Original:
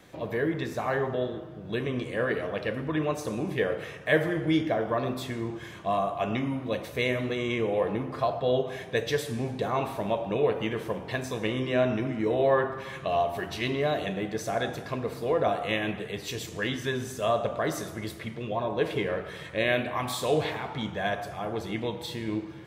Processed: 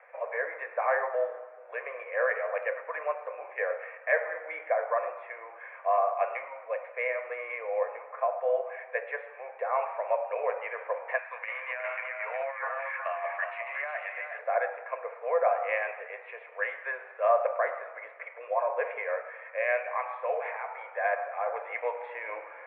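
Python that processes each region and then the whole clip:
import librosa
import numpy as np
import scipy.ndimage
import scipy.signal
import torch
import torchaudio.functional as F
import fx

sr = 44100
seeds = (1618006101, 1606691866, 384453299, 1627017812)

y = fx.chain(x, sr, fx.highpass(hz=1300.0, slope=12),
    fx.over_compress(threshold_db=-37.0, ratio=-0.5),
    fx.echo_single(ms=365, db=-5.5), at=(11.18, 14.39))
y = scipy.signal.sosfilt(scipy.signal.cheby1(5, 1.0, [500.0, 2400.0], 'bandpass', fs=sr, output='sos'), y)
y = fx.rider(y, sr, range_db=10, speed_s=2.0)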